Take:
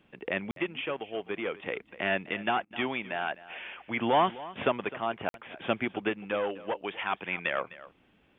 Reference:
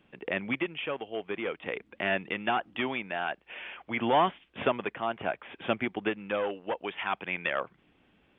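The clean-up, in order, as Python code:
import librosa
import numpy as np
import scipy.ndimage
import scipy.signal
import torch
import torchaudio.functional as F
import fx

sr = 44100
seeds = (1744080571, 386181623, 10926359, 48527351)

y = fx.fix_interpolate(x, sr, at_s=(0.51, 5.29), length_ms=52.0)
y = fx.fix_interpolate(y, sr, at_s=(2.65,), length_ms=54.0)
y = fx.fix_echo_inverse(y, sr, delay_ms=256, level_db=-17.5)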